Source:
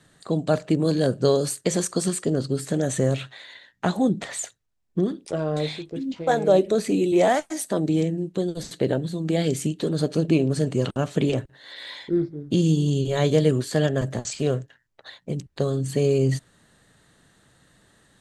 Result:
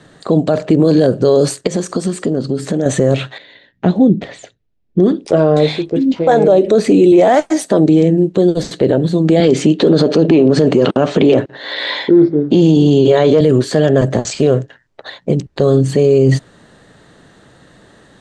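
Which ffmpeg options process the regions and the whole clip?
-filter_complex "[0:a]asettb=1/sr,asplit=3[s0][s1][s2];[s0]atrim=end=1.674[s3];[s1]atrim=start=1.67:end=2.86,asetpts=PTS-STARTPTS,afade=t=in:d=0.004:c=qsin,afade=t=out:st=1.186:d=0.004:c=qsin,equalizer=f=220:w=2.2:g=5.5,acompressor=threshold=0.0282:ratio=3:attack=3.2:release=140:knee=1:detection=peak[s4];[s2]atrim=start=2.856[s5];[s3][s4]acrossfade=d=0.004:c1=hsin:c2=qsin[s6];[s6][s5]acrossfade=d=0.004:c1=qsin:c2=hsin,asettb=1/sr,asplit=3[s7][s8][s9];[s7]atrim=end=3.384[s10];[s8]atrim=start=3.38:end=5,asetpts=PTS-STARTPTS,afade=t=in:d=0.004:c=qsin,afade=t=out:st=1.616:d=0.004:c=qsin,lowpass=2900,equalizer=f=1100:t=o:w=2.2:g=-14[s11];[s9]atrim=start=4.996[s12];[s10][s11]acrossfade=d=0.004:c1=hsin:c2=qsin[s13];[s13][s12]acrossfade=d=0.004:c1=qsin:c2=hsin,asettb=1/sr,asplit=3[s14][s15][s16];[s14]atrim=end=9.404[s17];[s15]atrim=start=9.4:end=13.41,asetpts=PTS-STARTPTS,afade=t=in:d=0.004:c=qsin,afade=t=out:st=4.006:d=0.004:c=qsin,acontrast=71,highpass=190,lowpass=5300[s18];[s16]atrim=start=13.406[s19];[s17][s18]acrossfade=d=0.004:c1=hsin:c2=qsin[s20];[s20][s19]acrossfade=d=0.004:c1=qsin:c2=hsin,lowpass=6600,equalizer=f=450:w=0.51:g=7,alimiter=level_in=3.76:limit=0.891:release=50:level=0:latency=1,volume=0.891"

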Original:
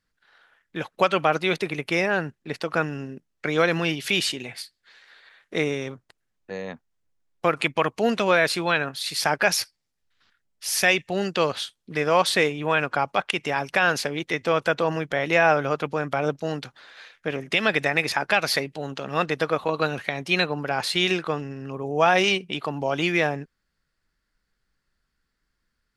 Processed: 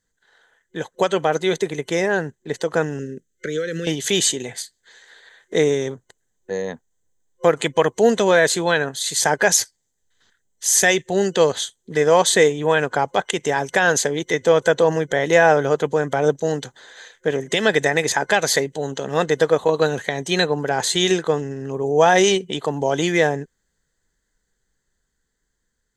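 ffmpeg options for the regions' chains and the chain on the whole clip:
-filter_complex "[0:a]asettb=1/sr,asplit=3[s0][s1][s2];[s0]atrim=end=2.994[s3];[s1]atrim=start=2.99:end=3.87,asetpts=PTS-STARTPTS,afade=t=in:d=0.004:c=qsin,afade=t=out:st=0.876:d=0.004:c=qsin,acompressor=threshold=0.0501:ratio=6:attack=3.2:release=140:knee=1:detection=peak,asuperstop=centerf=860:order=8:qfactor=1.2[s4];[s2]atrim=start=3.866[s5];[s3][s4]acrossfade=d=0.004:c1=hsin:c2=qsin[s6];[s6][s5]acrossfade=d=0.004:c1=qsin:c2=hsin,dynaudnorm=f=600:g=9:m=1.78,superequalizer=7b=1.78:10b=0.501:12b=0.355:14b=0.708:15b=3.55,volume=1.19"

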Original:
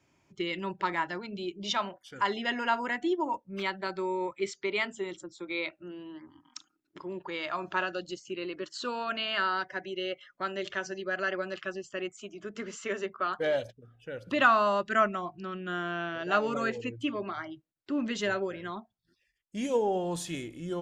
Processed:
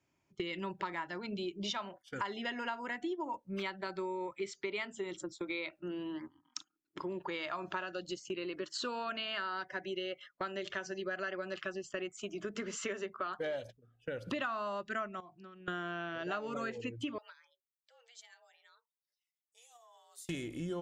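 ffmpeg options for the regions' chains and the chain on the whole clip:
-filter_complex "[0:a]asettb=1/sr,asplit=3[s0][s1][s2];[s0]atrim=end=15.204[s3];[s1]atrim=start=15.2:end=15.68,asetpts=PTS-STARTPTS,afade=t=in:d=0.004:c=qsin,afade=t=out:st=0.476:d=0.004:c=qsin,highpass=f=99:w=0.5412,highpass=f=99:w=1.3066,acompressor=threshold=0.00447:ratio=8:attack=3.2:release=140:knee=1:detection=peak[s4];[s2]atrim=start=15.676[s5];[s3][s4]acrossfade=d=0.004:c1=hsin:c2=qsin[s6];[s6][s5]acrossfade=d=0.004:c1=qsin:c2=hsin,asettb=1/sr,asplit=3[s7][s8][s9];[s7]atrim=end=17.184[s10];[s8]atrim=start=17.18:end=20.29,asetpts=PTS-STARTPTS,afade=t=in:d=0.004:c=qsin,afade=t=out:st=3.106:d=0.004:c=qsin,aderivative,acompressor=threshold=0.00447:ratio=5:attack=3.2:release=140:knee=1:detection=peak,afreqshift=240[s11];[s9]atrim=start=20.286[s12];[s10][s11]acrossfade=d=0.004:c1=hsin:c2=qsin[s13];[s13][s12]acrossfade=d=0.004:c1=qsin:c2=hsin,agate=range=0.178:threshold=0.00398:ratio=16:detection=peak,acompressor=threshold=0.00891:ratio=6,volume=1.78"

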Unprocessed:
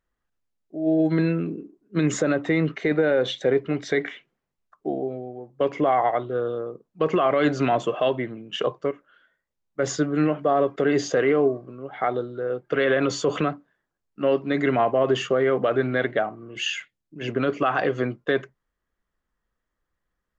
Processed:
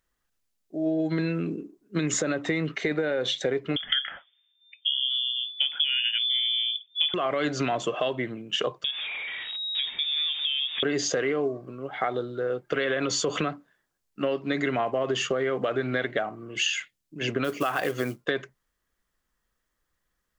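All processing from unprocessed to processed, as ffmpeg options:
-filter_complex "[0:a]asettb=1/sr,asplit=3[s0][s1][s2];[s0]atrim=end=3.764[s3];[s1]atrim=start=3.76:end=7.14,asetpts=PTS-STARTPTS,afade=t=in:d=0.004:c=qsin,afade=t=out:st=3.376:d=0.004:c=qsin,asubboost=boost=9:cutoff=180,lowpass=f=3100:t=q:w=0.5098,lowpass=f=3100:t=q:w=0.6013,lowpass=f=3100:t=q:w=0.9,lowpass=f=3100:t=q:w=2.563,afreqshift=-3600[s4];[s2]atrim=start=7.136[s5];[s3][s4]acrossfade=d=0.004:c1=hsin:c2=qsin[s6];[s6][s5]acrossfade=d=0.004:c1=qsin:c2=hsin,asettb=1/sr,asplit=3[s7][s8][s9];[s7]atrim=end=8.844[s10];[s8]atrim=start=8.84:end=10.83,asetpts=PTS-STARTPTS,afade=t=in:d=0.004:c=qsin,afade=t=out:st=1.986:d=0.004:c=qsin,aeval=exprs='val(0)+0.5*0.0237*sgn(val(0))':c=same,acompressor=threshold=0.02:ratio=3:attack=3.2:release=140:knee=1:detection=peak,lowpass=f=3200:t=q:w=0.5098,lowpass=f=3200:t=q:w=0.6013,lowpass=f=3200:t=q:w=0.9,lowpass=f=3200:t=q:w=2.563,afreqshift=-3800[s11];[s9]atrim=start=10.826[s12];[s10][s11]acrossfade=d=0.004:c1=hsin:c2=qsin[s13];[s13][s12]acrossfade=d=0.004:c1=qsin:c2=hsin,asettb=1/sr,asplit=3[s14][s15][s16];[s14]atrim=end=17.444[s17];[s15]atrim=start=17.44:end=18.25,asetpts=PTS-STARTPTS,afade=t=in:d=0.004:c=qsin,afade=t=out:st=0.806:d=0.004:c=qsin,lowshelf=f=61:g=-6,acrusher=bits=7:mode=log:mix=0:aa=0.000001[s18];[s16]atrim=start=18.246[s19];[s17][s18]acrossfade=d=0.004:c1=hsin:c2=qsin[s20];[s20][s19]acrossfade=d=0.004:c1=qsin:c2=hsin,highshelf=f=2600:g=10.5,acompressor=threshold=0.0708:ratio=6"

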